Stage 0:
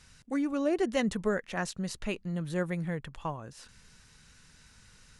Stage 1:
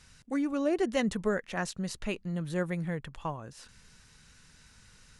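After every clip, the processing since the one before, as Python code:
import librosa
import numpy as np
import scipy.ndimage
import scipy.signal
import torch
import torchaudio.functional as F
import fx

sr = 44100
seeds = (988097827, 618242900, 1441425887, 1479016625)

y = x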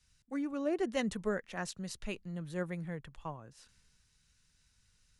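y = fx.band_widen(x, sr, depth_pct=40)
y = y * 10.0 ** (-6.0 / 20.0)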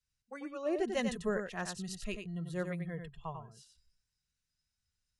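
y = fx.noise_reduce_blind(x, sr, reduce_db=17)
y = y + 10.0 ** (-6.5 / 20.0) * np.pad(y, (int(93 * sr / 1000.0), 0))[:len(y)]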